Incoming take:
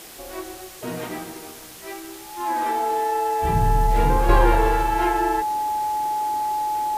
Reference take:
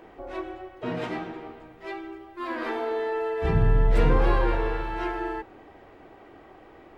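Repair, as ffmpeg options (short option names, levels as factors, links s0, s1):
-af "adeclick=t=4,bandreject=f=850:w=30,afwtdn=0.0089,asetnsamples=n=441:p=0,asendcmd='4.29 volume volume -6.5dB',volume=1"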